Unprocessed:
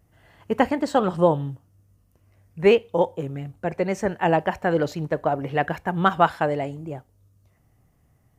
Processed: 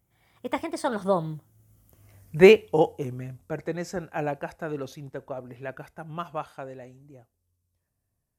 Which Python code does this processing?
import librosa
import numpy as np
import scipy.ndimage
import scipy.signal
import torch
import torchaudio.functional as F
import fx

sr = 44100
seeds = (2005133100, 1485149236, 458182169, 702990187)

y = fx.doppler_pass(x, sr, speed_mps=39, closest_m=16.0, pass_at_s=2.2)
y = fx.high_shelf(y, sr, hz=5500.0, db=11.5)
y = y * 10.0 ** (4.0 / 20.0)